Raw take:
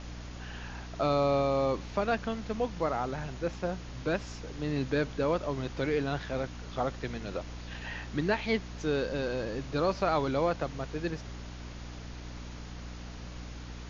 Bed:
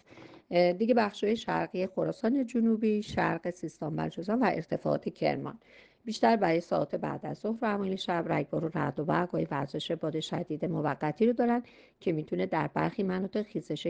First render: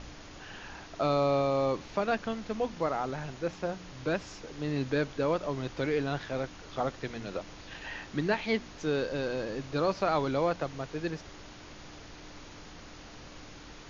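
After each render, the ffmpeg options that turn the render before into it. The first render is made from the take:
-af "bandreject=f=60:t=h:w=4,bandreject=f=120:t=h:w=4,bandreject=f=180:t=h:w=4,bandreject=f=240:t=h:w=4"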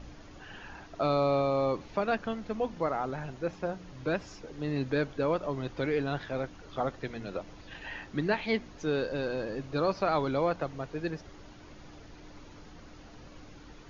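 -af "afftdn=nr=8:nf=-48"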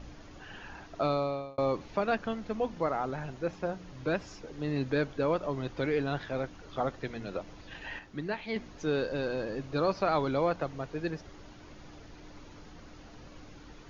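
-filter_complex "[0:a]asplit=4[a][b][c][d];[a]atrim=end=1.58,asetpts=PTS-STARTPTS,afade=t=out:st=1.01:d=0.57[e];[b]atrim=start=1.58:end=7.992,asetpts=PTS-STARTPTS,afade=t=in:d=0.004:c=hsin[f];[c]atrim=start=7.988:end=8.562,asetpts=PTS-STARTPTS,volume=-6dB[g];[d]atrim=start=8.558[h];[e][f]concat=n=2:v=0:a=1[i];[i][g]acrossfade=d=0.004:c1=hsin:c2=hsin[j];[j][h]acrossfade=d=0.004:c1=hsin:c2=hsin"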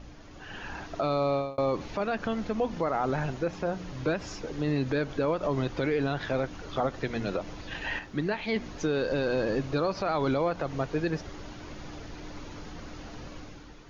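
-af "alimiter=level_in=2.5dB:limit=-24dB:level=0:latency=1:release=97,volume=-2.5dB,dynaudnorm=f=120:g=9:m=8dB"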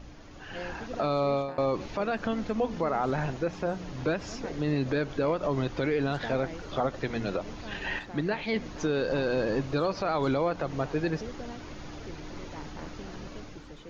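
-filter_complex "[1:a]volume=-15.5dB[a];[0:a][a]amix=inputs=2:normalize=0"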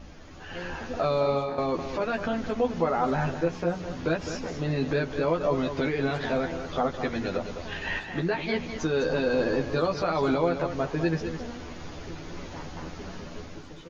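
-filter_complex "[0:a]asplit=2[a][b];[b]adelay=12,volume=-3dB[c];[a][c]amix=inputs=2:normalize=0,aecho=1:1:206:0.355"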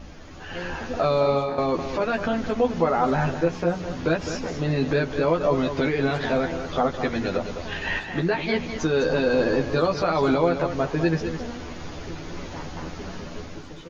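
-af "volume=4dB"

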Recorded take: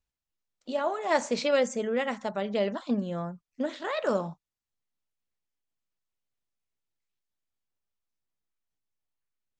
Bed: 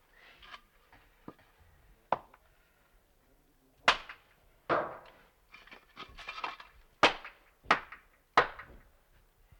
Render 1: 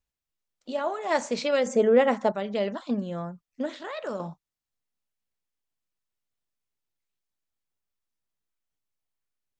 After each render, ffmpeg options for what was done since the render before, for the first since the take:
-filter_complex "[0:a]asettb=1/sr,asplit=3[a][b][c];[a]atrim=end=1.664[d];[b]atrim=start=1.66:end=2.32,asetpts=PTS-STARTPTS,afade=t=in:d=0.004:c=qsin,afade=t=out:st=0.656:d=0.004:c=qsin,equalizer=f=470:t=o:w=2.9:g=10.5[e];[c]atrim=start=2.316[f];[d][e]acrossfade=d=0.004:c1=hsin:c2=qsin[g];[g][f]acrossfade=d=0.004:c1=qsin:c2=hsin,asettb=1/sr,asplit=3[h][i][j];[h]atrim=end=3.794[k];[i]atrim=start=3.79:end=4.2,asetpts=PTS-STARTPTS,afade=t=in:d=0.004:c=qsin,afade=t=out:st=0.406:d=0.004:c=qsin,acompressor=threshold=-39dB:ratio=1.5:attack=3.2:release=140:knee=1:detection=peak[l];[j]atrim=start=4.196[m];[k][l]acrossfade=d=0.004:c1=hsin:c2=qsin[n];[n][m]acrossfade=d=0.004:c1=qsin:c2=hsin"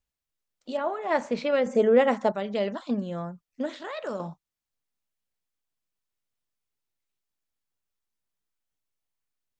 -filter_complex "[0:a]asettb=1/sr,asplit=3[a][b][c];[a]atrim=end=0.774[d];[b]atrim=start=0.77:end=1.75,asetpts=PTS-STARTPTS,afade=t=in:d=0.004:c=qsin,afade=t=out:st=0.976:d=0.004:c=qsin,bass=f=250:g=3,treble=f=4k:g=-14[e];[c]atrim=start=1.746[f];[d][e]acrossfade=d=0.004:c1=hsin:c2=qsin[g];[g][f]acrossfade=d=0.004:c1=qsin:c2=hsin"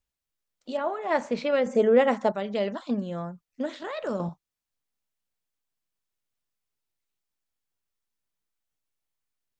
-filter_complex "[0:a]asettb=1/sr,asplit=3[a][b][c];[a]atrim=end=3.824[d];[b]atrim=start=3.82:end=4.29,asetpts=PTS-STARTPTS,afade=t=in:d=0.004:c=qsin,afade=t=out:st=0.466:d=0.004:c=qsin,lowshelf=f=300:g=9[e];[c]atrim=start=4.286[f];[d][e]acrossfade=d=0.004:c1=hsin:c2=qsin[g];[g][f]acrossfade=d=0.004:c1=qsin:c2=hsin"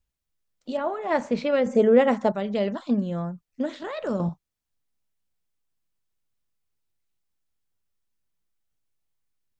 -af "lowshelf=f=240:g=9"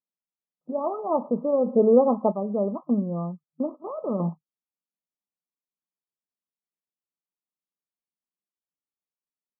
-af "agate=range=-11dB:threshold=-34dB:ratio=16:detection=peak,afftfilt=real='re*between(b*sr/4096,160,1300)':imag='im*between(b*sr/4096,160,1300)':win_size=4096:overlap=0.75"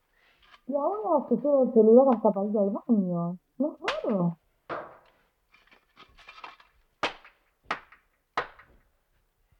-filter_complex "[1:a]volume=-5.5dB[a];[0:a][a]amix=inputs=2:normalize=0"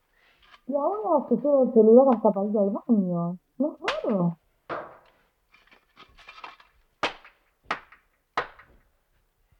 -af "volume=2dB"

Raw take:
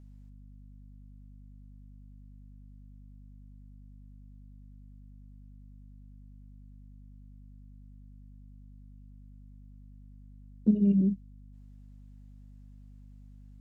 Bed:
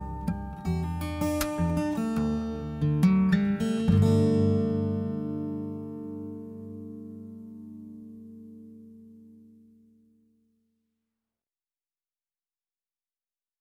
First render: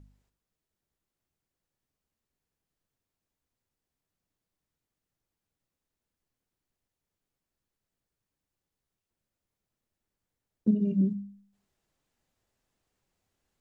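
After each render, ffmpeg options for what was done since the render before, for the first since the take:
-af "bandreject=f=50:t=h:w=4,bandreject=f=100:t=h:w=4,bandreject=f=150:t=h:w=4,bandreject=f=200:t=h:w=4,bandreject=f=250:t=h:w=4"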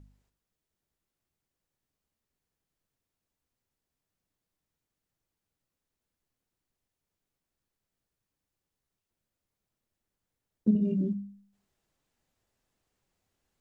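-filter_complex "[0:a]asettb=1/sr,asplit=3[a][b][c];[a]atrim=end=10.734[d];[b]atrim=start=10.73:end=11.13,asetpts=PTS-STARTPTS,afade=t=in:d=0.004:c=qsin,afade=t=out:st=0.396:d=0.004:c=qsin,asplit=2[e][f];[f]adelay=23,volume=-4dB[g];[e][g]amix=inputs=2:normalize=0,atrim=end_sample=17640[h];[c]atrim=start=11.126[i];[d][h]acrossfade=d=0.004:c1=hsin:c2=qsin[j];[j][i]acrossfade=d=0.004:c1=qsin:c2=hsin"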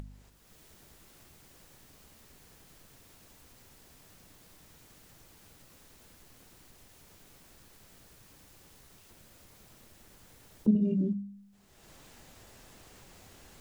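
-af "acompressor=mode=upward:threshold=-33dB:ratio=2.5"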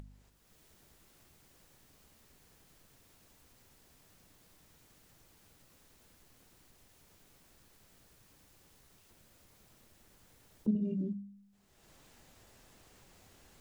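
-af "volume=-6.5dB"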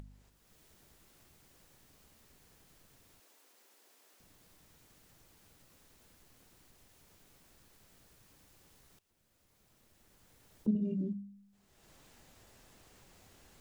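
-filter_complex "[0:a]asettb=1/sr,asplit=3[a][b][c];[a]atrim=end=3.204[d];[b]atrim=start=3.2:end=4.2,asetpts=PTS-STARTPTS,afade=t=in:d=0.004:c=qsin,afade=t=out:st=0.996:d=0.004:c=qsin,highpass=f=320:w=0.5412,highpass=f=320:w=1.3066[e];[c]atrim=start=4.196[f];[d][e]acrossfade=d=0.004:c1=hsin:c2=qsin[g];[g][f]acrossfade=d=0.004:c1=qsin:c2=hsin,asplit=2[h][i];[h]atrim=end=8.99,asetpts=PTS-STARTPTS,afade=t=out:st=8.986:d=0.004:c=hsin:silence=0.133352[j];[i]atrim=start=8.99,asetpts=PTS-STARTPTS,afade=t=in:d=1.6:silence=0.133352[k];[j][k]concat=n=2:v=0:a=1"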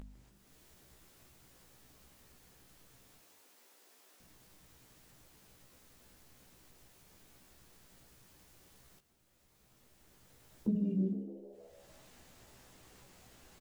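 -filter_complex "[0:a]asplit=2[a][b];[b]adelay=16,volume=-4.5dB[c];[a][c]amix=inputs=2:normalize=0,asplit=7[d][e][f][g][h][i][j];[e]adelay=154,afreqshift=74,volume=-17dB[k];[f]adelay=308,afreqshift=148,volume=-20.9dB[l];[g]adelay=462,afreqshift=222,volume=-24.8dB[m];[h]adelay=616,afreqshift=296,volume=-28.6dB[n];[i]adelay=770,afreqshift=370,volume=-32.5dB[o];[j]adelay=924,afreqshift=444,volume=-36.4dB[p];[d][k][l][m][n][o][p]amix=inputs=7:normalize=0"

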